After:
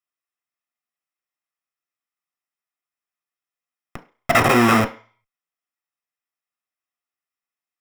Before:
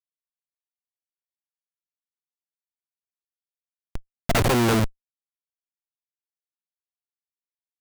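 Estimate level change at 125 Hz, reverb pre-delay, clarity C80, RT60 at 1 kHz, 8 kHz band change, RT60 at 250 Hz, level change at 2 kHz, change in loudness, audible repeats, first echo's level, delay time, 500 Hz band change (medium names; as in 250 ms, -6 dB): -1.0 dB, 3 ms, 19.5 dB, 0.45 s, +1.0 dB, 0.30 s, +9.0 dB, +5.0 dB, no echo, no echo, no echo, +4.0 dB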